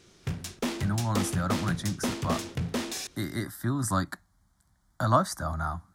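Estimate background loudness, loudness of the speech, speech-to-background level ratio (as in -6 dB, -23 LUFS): -33.5 LUFS, -30.5 LUFS, 3.0 dB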